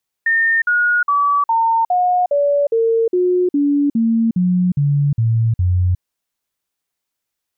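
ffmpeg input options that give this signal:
-f lavfi -i "aevalsrc='0.251*clip(min(mod(t,0.41),0.36-mod(t,0.41))/0.005,0,1)*sin(2*PI*1820*pow(2,-floor(t/0.41)/3)*mod(t,0.41))':d=5.74:s=44100"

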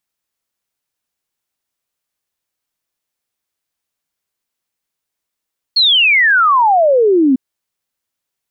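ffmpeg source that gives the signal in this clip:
-f lavfi -i "aevalsrc='0.422*clip(min(t,1.6-t)/0.01,0,1)*sin(2*PI*4400*1.6/log(250/4400)*(exp(log(250/4400)*t/1.6)-1))':d=1.6:s=44100"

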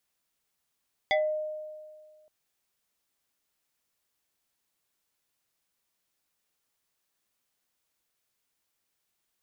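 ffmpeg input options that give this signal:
-f lavfi -i "aevalsrc='0.0944*pow(10,-3*t/1.86)*sin(2*PI*615*t+2.1*pow(10,-3*t/0.26)*sin(2*PI*2.26*615*t))':d=1.17:s=44100"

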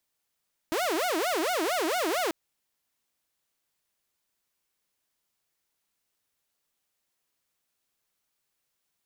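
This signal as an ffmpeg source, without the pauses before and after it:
-f lavfi -i "aevalsrc='0.0708*(2*mod((525.5*t-214.5/(2*PI*4.4)*sin(2*PI*4.4*t)),1)-1)':d=1.59:s=44100"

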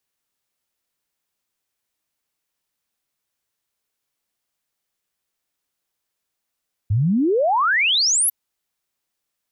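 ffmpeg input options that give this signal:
-f lavfi -i "aevalsrc='0.178*clip(min(t,1.4-t)/0.01,0,1)*sin(2*PI*94*1.4/log(12000/94)*(exp(log(12000/94)*t/1.4)-1))':d=1.4:s=44100"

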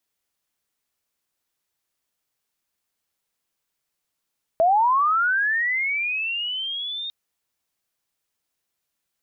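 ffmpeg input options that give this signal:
-f lavfi -i "aevalsrc='pow(10,(-14-14*t/2.5)/20)*sin(2*PI*(640*t+3060*t*t/(2*2.5)))':d=2.5:s=44100"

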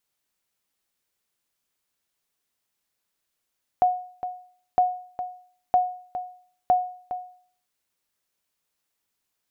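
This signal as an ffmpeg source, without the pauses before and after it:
-f lavfi -i "aevalsrc='0.251*(sin(2*PI*728*mod(t,0.96))*exp(-6.91*mod(t,0.96)/0.51)+0.266*sin(2*PI*728*max(mod(t,0.96)-0.41,0))*exp(-6.91*max(mod(t,0.96)-0.41,0)/0.51))':d=3.84:s=44100"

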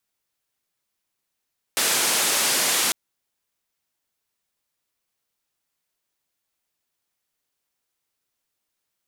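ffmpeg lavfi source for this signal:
-f lavfi -i "anoisesrc=c=white:d=1.15:r=44100:seed=1,highpass=f=230,lowpass=f=11000,volume=-13.6dB"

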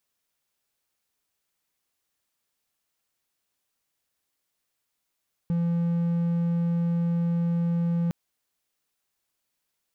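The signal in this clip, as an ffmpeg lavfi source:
-f lavfi -i "aevalsrc='0.1*(1-4*abs(mod(170*t+0.25,1)-0.5))':d=2.61:s=44100"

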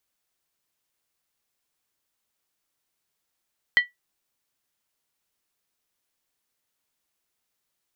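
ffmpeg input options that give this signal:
-f lavfi -i "aevalsrc='0.316*pow(10,-3*t/0.16)*sin(2*PI*1950*t)+0.0944*pow(10,-3*t/0.127)*sin(2*PI*3108.3*t)+0.0282*pow(10,-3*t/0.109)*sin(2*PI*4165.2*t)+0.00841*pow(10,-3*t/0.106)*sin(2*PI*4477.2*t)+0.00251*pow(10,-3*t/0.098)*sin(2*PI*5173.4*t)':d=0.63:s=44100"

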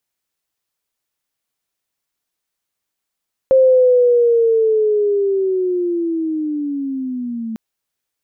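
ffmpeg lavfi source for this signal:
-f lavfi -i "aevalsrc='pow(10,(-7-15*t/4.05)/20)*sin(2*PI*(530*t-310*t*t/(2*4.05)))':d=4.05:s=44100"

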